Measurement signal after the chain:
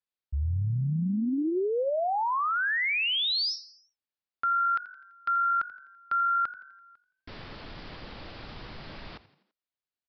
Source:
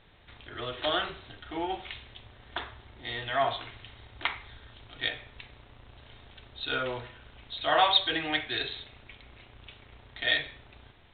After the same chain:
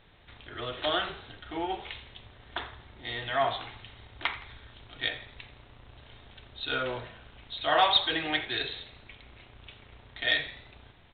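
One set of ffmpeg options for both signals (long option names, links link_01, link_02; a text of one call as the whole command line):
ffmpeg -i in.wav -filter_complex "[0:a]aresample=11025,volume=13.5dB,asoftclip=hard,volume=-13.5dB,aresample=44100,asplit=5[link_01][link_02][link_03][link_04][link_05];[link_02]adelay=84,afreqshift=47,volume=-17dB[link_06];[link_03]adelay=168,afreqshift=94,volume=-23.2dB[link_07];[link_04]adelay=252,afreqshift=141,volume=-29.4dB[link_08];[link_05]adelay=336,afreqshift=188,volume=-35.6dB[link_09];[link_01][link_06][link_07][link_08][link_09]amix=inputs=5:normalize=0" out.wav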